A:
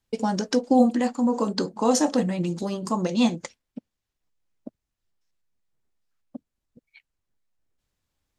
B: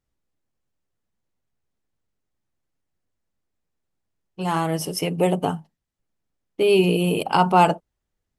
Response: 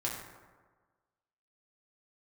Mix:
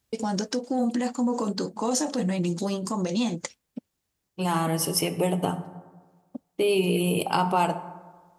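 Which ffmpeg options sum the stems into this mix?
-filter_complex "[0:a]acontrast=35,alimiter=limit=-14dB:level=0:latency=1:release=65,volume=-4.5dB[link_01];[1:a]acompressor=threshold=-24dB:ratio=2.5,volume=-2dB,asplit=2[link_02][link_03];[link_03]volume=-9.5dB[link_04];[2:a]atrim=start_sample=2205[link_05];[link_04][link_05]afir=irnorm=-1:irlink=0[link_06];[link_01][link_02][link_06]amix=inputs=3:normalize=0,highpass=41,highshelf=frequency=5700:gain=7.5"

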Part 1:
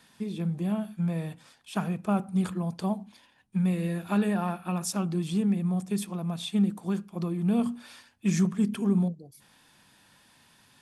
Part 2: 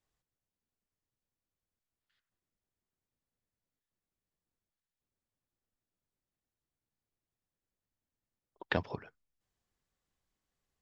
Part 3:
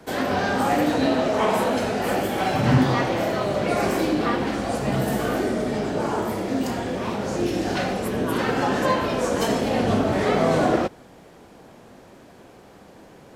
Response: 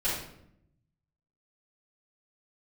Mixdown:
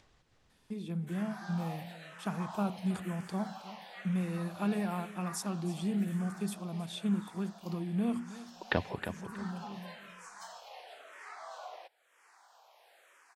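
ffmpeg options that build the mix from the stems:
-filter_complex "[0:a]agate=range=-26dB:threshold=-47dB:ratio=16:detection=peak,adelay=500,volume=-6.5dB,asplit=2[link_01][link_02];[link_02]volume=-16dB[link_03];[1:a]lowpass=4900,volume=1.5dB,asplit=3[link_04][link_05][link_06];[link_05]volume=-9dB[link_07];[2:a]highpass=frequency=760:width=0.5412,highpass=frequency=760:width=1.3066,asplit=2[link_08][link_09];[link_09]afreqshift=-1[link_10];[link_08][link_10]amix=inputs=2:normalize=1,adelay=1000,volume=-18dB[link_11];[link_06]apad=whole_len=499112[link_12];[link_01][link_12]sidechaincompress=threshold=-50dB:ratio=8:attack=16:release=612[link_13];[link_03][link_07]amix=inputs=2:normalize=0,aecho=0:1:317|634|951:1|0.2|0.04[link_14];[link_13][link_04][link_11][link_14]amix=inputs=4:normalize=0,acompressor=mode=upward:threshold=-50dB:ratio=2.5"

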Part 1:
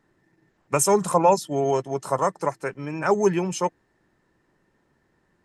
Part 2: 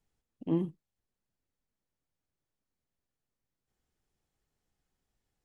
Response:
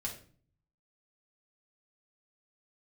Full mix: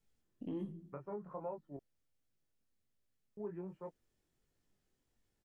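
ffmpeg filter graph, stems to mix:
-filter_complex "[0:a]lowpass=frequency=1500:width=0.5412,lowpass=frequency=1500:width=1.3066,adelay=200,volume=-17.5dB,asplit=3[link_01][link_02][link_03];[link_01]atrim=end=1.77,asetpts=PTS-STARTPTS,afade=type=out:start_time=1.766:duration=0.004:curve=hsin[link_04];[link_02]atrim=start=1.77:end=3.37,asetpts=PTS-STARTPTS,volume=0[link_05];[link_03]atrim=start=3.37,asetpts=PTS-STARTPTS,afade=type=in:duration=0.004:curve=hsin[link_06];[link_04][link_05][link_06]concat=n=3:v=0:a=1[link_07];[1:a]volume=1.5dB,asplit=2[link_08][link_09];[link_09]volume=-9.5dB[link_10];[2:a]atrim=start_sample=2205[link_11];[link_10][link_11]afir=irnorm=-1:irlink=0[link_12];[link_07][link_08][link_12]amix=inputs=3:normalize=0,equalizer=frequency=920:width=1.4:gain=-5.5,flanger=delay=18.5:depth=5.6:speed=1.3,alimiter=level_in=9.5dB:limit=-24dB:level=0:latency=1:release=208,volume=-9.5dB"

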